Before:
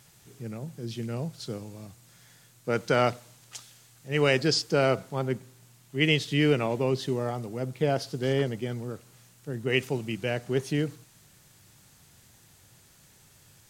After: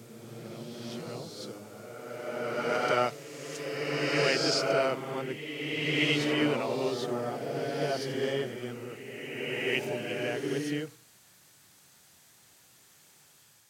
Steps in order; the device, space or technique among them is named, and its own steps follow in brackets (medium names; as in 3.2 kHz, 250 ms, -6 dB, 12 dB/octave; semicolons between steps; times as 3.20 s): ghost voice (reverse; reverberation RT60 2.8 s, pre-delay 15 ms, DRR -3 dB; reverse; high-pass 420 Hz 6 dB/octave); trim -4.5 dB